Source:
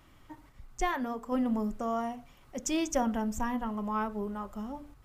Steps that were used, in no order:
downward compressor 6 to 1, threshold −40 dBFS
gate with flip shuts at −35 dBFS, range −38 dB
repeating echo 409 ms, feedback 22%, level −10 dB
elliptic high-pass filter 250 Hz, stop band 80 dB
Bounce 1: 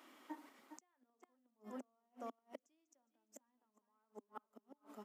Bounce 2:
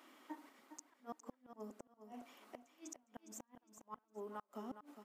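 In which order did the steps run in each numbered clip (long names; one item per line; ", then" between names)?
repeating echo, then downward compressor, then gate with flip, then elliptic high-pass filter
downward compressor, then elliptic high-pass filter, then gate with flip, then repeating echo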